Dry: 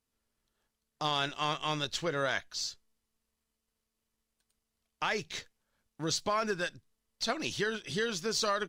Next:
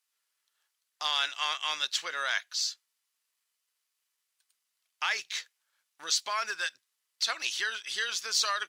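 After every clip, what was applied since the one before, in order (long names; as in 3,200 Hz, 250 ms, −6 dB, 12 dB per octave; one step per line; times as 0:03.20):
high-pass filter 1,400 Hz 12 dB per octave
level +5.5 dB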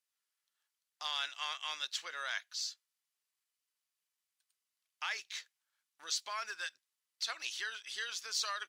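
low-shelf EQ 260 Hz −8 dB
level −8 dB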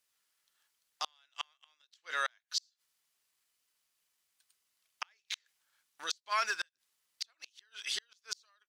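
gate with flip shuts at −29 dBFS, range −40 dB
level +9 dB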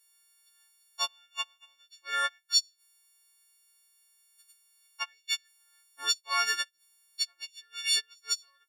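every partial snapped to a pitch grid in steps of 4 semitones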